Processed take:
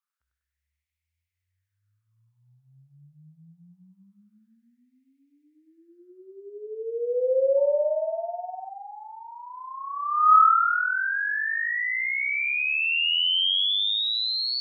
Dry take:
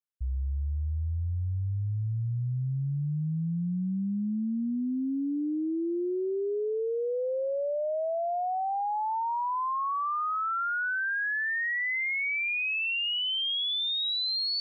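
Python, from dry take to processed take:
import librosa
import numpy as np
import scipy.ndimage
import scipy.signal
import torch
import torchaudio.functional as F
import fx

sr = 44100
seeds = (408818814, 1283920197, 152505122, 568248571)

y = fx.filter_lfo_highpass(x, sr, shape='sine', hz=0.24, low_hz=620.0, high_hz=2200.0, q=6.1)
y = fx.echo_feedback(y, sr, ms=98, feedback_pct=43, wet_db=-5.0)
y = fx.dmg_tone(y, sr, hz=900.0, level_db=-46.0, at=(7.56, 8.68), fade=0.02)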